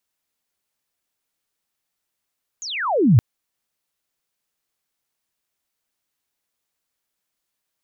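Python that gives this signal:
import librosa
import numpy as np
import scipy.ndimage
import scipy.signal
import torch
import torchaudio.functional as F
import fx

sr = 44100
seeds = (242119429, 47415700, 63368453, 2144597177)

y = fx.chirp(sr, length_s=0.57, from_hz=7000.0, to_hz=100.0, law='logarithmic', from_db=-29.0, to_db=-7.5)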